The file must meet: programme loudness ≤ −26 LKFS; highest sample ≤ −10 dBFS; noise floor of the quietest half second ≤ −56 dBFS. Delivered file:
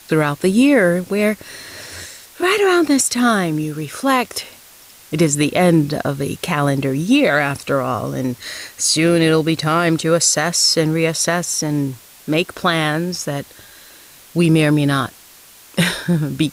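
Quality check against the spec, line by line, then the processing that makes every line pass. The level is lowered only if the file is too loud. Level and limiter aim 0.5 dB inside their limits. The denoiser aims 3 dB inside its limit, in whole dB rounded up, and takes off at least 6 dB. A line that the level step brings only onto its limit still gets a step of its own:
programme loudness −17.0 LKFS: out of spec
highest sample −4.5 dBFS: out of spec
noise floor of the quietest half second −44 dBFS: out of spec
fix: broadband denoise 6 dB, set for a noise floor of −44 dBFS
level −9.5 dB

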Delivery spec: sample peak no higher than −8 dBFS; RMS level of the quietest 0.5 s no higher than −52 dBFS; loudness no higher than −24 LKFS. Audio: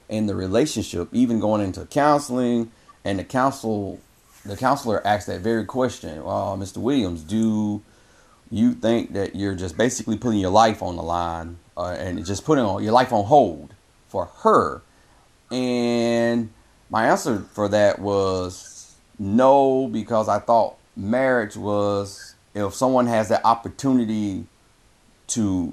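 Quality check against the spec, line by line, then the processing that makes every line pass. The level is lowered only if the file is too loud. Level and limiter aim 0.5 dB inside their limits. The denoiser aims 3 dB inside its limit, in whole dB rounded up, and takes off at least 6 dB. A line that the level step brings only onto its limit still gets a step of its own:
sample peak −3.0 dBFS: out of spec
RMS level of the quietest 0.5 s −57 dBFS: in spec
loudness −21.5 LKFS: out of spec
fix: level −3 dB
brickwall limiter −8.5 dBFS

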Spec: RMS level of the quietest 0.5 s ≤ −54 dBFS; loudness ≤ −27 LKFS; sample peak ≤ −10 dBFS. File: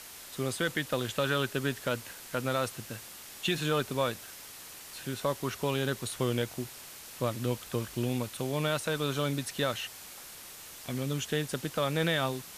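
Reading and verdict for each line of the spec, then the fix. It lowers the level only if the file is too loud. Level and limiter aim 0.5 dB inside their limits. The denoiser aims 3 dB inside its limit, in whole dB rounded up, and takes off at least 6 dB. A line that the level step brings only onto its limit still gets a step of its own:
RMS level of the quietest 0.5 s −47 dBFS: out of spec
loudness −32.5 LKFS: in spec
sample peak −15.5 dBFS: in spec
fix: broadband denoise 10 dB, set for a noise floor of −47 dBFS

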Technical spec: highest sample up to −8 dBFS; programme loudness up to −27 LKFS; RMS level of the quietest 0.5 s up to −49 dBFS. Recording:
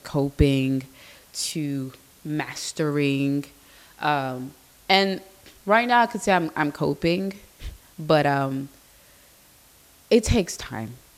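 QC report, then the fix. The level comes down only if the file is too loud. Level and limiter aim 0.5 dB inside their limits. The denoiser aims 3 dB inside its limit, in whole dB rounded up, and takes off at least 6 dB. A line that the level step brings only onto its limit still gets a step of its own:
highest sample −5.0 dBFS: out of spec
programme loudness −23.5 LKFS: out of spec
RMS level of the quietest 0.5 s −54 dBFS: in spec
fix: level −4 dB

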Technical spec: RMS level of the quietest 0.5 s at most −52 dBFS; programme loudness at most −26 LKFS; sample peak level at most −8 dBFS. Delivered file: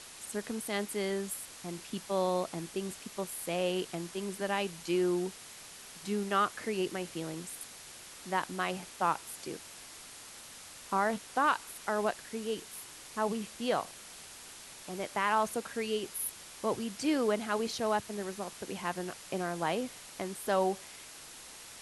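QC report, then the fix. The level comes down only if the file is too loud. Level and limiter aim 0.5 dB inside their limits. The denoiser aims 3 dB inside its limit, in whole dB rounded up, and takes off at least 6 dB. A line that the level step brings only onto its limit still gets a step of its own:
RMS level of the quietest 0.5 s −50 dBFS: out of spec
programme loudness −34.5 LKFS: in spec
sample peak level −16.5 dBFS: in spec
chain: broadband denoise 6 dB, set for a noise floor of −50 dBFS

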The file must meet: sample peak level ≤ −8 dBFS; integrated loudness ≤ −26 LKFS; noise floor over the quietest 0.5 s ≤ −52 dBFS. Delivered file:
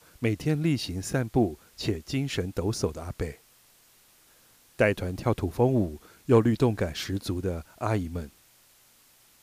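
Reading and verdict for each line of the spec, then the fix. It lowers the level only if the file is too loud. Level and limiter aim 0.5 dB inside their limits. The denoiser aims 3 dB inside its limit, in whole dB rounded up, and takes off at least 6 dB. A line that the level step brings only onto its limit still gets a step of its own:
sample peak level −10.0 dBFS: in spec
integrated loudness −28.0 LKFS: in spec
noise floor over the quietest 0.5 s −60 dBFS: in spec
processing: no processing needed

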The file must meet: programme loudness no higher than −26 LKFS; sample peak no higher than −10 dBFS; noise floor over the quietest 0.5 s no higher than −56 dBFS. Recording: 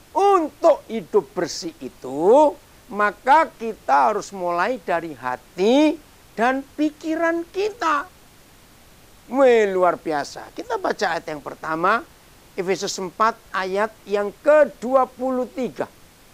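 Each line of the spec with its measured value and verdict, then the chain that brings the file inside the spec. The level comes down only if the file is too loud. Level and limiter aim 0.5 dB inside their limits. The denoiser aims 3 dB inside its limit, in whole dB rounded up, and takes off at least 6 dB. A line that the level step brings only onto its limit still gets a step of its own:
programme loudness −21.0 LKFS: out of spec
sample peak −4.0 dBFS: out of spec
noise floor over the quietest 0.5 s −49 dBFS: out of spec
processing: broadband denoise 6 dB, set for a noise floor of −49 dBFS
level −5.5 dB
brickwall limiter −10.5 dBFS

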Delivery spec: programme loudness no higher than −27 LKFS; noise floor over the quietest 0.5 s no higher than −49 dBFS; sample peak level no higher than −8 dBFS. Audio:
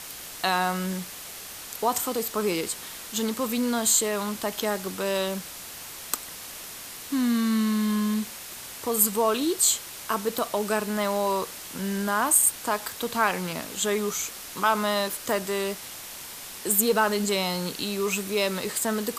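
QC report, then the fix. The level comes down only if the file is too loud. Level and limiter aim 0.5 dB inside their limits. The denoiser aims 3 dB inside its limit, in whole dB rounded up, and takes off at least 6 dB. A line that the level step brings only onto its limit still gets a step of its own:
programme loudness −25.5 LKFS: out of spec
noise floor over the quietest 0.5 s −40 dBFS: out of spec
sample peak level −6.0 dBFS: out of spec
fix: broadband denoise 10 dB, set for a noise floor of −40 dBFS
level −2 dB
brickwall limiter −8.5 dBFS

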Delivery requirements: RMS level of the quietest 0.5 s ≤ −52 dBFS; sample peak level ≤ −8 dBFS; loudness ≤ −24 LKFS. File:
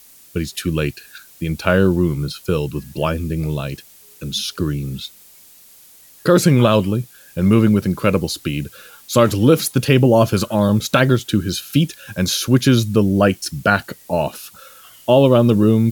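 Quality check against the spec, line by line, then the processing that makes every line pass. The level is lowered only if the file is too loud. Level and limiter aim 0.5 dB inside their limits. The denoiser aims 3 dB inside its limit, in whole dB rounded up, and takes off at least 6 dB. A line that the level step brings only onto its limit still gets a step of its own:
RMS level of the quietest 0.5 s −46 dBFS: out of spec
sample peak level −1.5 dBFS: out of spec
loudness −17.5 LKFS: out of spec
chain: level −7 dB

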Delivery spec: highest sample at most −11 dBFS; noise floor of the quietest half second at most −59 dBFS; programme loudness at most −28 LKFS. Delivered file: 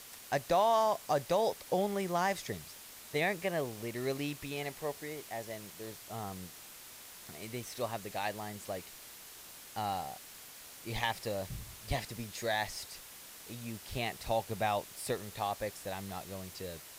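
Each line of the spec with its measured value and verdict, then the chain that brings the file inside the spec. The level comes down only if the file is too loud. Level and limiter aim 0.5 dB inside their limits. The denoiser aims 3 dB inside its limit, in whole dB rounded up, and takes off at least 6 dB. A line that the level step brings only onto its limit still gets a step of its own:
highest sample −18.5 dBFS: in spec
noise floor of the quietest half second −51 dBFS: out of spec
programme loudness −36.0 LKFS: in spec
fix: broadband denoise 11 dB, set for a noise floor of −51 dBFS

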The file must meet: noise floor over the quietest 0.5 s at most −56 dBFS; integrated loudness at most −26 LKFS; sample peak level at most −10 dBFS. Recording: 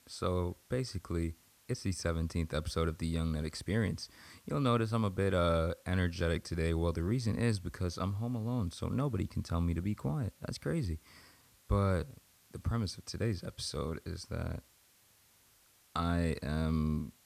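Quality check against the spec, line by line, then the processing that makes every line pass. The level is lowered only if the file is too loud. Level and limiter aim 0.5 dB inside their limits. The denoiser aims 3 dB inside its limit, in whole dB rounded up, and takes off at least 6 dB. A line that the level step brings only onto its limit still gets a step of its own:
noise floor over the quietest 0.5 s −66 dBFS: in spec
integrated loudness −35.0 LKFS: in spec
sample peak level −17.5 dBFS: in spec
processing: no processing needed

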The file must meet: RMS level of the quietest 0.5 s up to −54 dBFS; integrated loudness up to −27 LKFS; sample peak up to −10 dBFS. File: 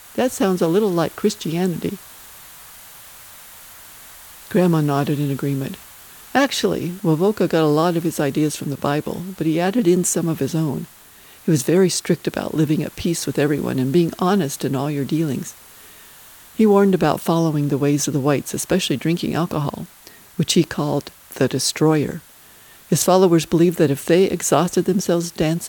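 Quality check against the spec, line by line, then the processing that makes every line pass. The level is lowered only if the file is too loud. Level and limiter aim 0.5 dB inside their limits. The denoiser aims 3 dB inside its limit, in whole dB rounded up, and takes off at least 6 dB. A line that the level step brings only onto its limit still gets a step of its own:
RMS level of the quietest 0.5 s −46 dBFS: out of spec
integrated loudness −19.5 LKFS: out of spec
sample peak −2.5 dBFS: out of spec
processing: broadband denoise 6 dB, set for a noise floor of −46 dBFS
level −8 dB

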